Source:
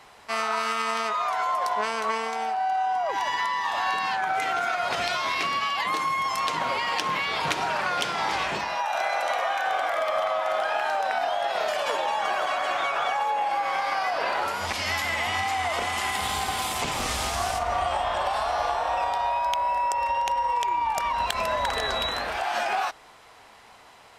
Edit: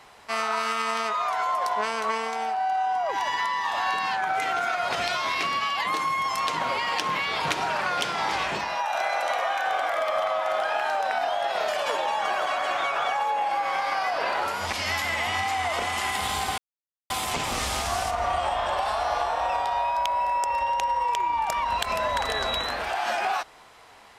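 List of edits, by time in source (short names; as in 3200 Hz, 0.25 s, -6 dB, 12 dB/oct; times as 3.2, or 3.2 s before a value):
16.58 insert silence 0.52 s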